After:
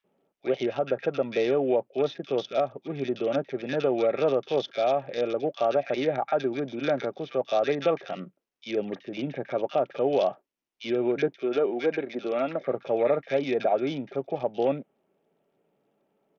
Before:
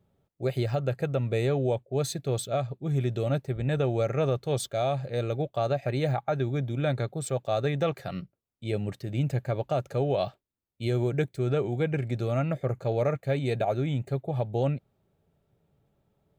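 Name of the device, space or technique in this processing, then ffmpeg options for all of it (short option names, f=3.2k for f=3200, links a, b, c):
Bluetooth headset: -filter_complex "[0:a]asettb=1/sr,asplit=3[a][b][c];[a]atrim=end=11.314[d];[b]atrim=start=11.31:end=12.57,asetpts=PTS-STARTPTS,afade=t=in:d=0.004:c=qsin,afade=t=out:st=1.256:d=0.004:c=qsin,highpass=230[e];[c]atrim=start=12.566[f];[d][e]acrossfade=d=0.004:c1=hsin:c2=qsin[g];[g][f]acrossfade=d=0.004:c1=qsin:c2=hsin,highpass=f=230:w=0.5412,highpass=f=230:w=1.3066,highshelf=f=7.8k:g=4.5,acrossover=split=1500[h][i];[h]adelay=40[j];[j][i]amix=inputs=2:normalize=0,aresample=8000,aresample=44100,volume=4dB" -ar 48000 -c:a sbc -b:a 64k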